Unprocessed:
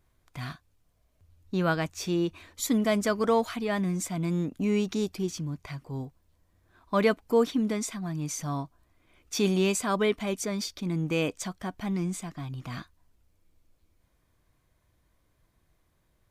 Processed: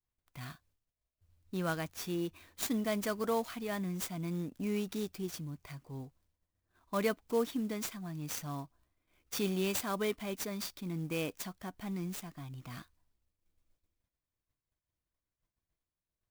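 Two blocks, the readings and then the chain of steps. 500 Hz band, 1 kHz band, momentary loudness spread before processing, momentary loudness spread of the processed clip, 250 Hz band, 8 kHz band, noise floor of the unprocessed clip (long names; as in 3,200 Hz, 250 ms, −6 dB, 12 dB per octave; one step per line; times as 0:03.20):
−8.5 dB, −8.5 dB, 13 LU, 14 LU, −8.5 dB, −7.0 dB, −70 dBFS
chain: downward expander −58 dBFS
high-shelf EQ 6,100 Hz +9 dB
converter with an unsteady clock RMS 0.028 ms
level −8.5 dB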